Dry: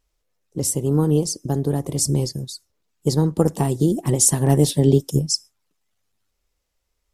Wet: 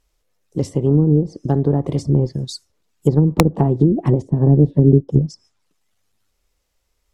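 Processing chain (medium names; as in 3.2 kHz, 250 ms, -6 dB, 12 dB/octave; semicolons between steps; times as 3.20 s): low-pass that closes with the level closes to 370 Hz, closed at -13.5 dBFS; integer overflow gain 6 dB; trim +5 dB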